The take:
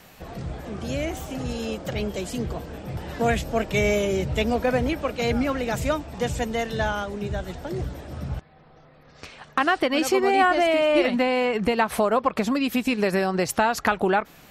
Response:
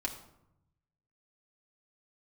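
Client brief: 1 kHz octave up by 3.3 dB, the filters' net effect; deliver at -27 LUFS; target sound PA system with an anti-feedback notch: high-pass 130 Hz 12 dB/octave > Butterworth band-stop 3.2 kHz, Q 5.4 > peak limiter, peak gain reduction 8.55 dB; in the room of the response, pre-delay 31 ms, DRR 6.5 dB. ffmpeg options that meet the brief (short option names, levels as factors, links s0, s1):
-filter_complex "[0:a]equalizer=f=1000:t=o:g=4.5,asplit=2[s0][s1];[1:a]atrim=start_sample=2205,adelay=31[s2];[s1][s2]afir=irnorm=-1:irlink=0,volume=0.355[s3];[s0][s3]amix=inputs=2:normalize=0,highpass=130,asuperstop=centerf=3200:order=8:qfactor=5.4,volume=0.668,alimiter=limit=0.178:level=0:latency=1"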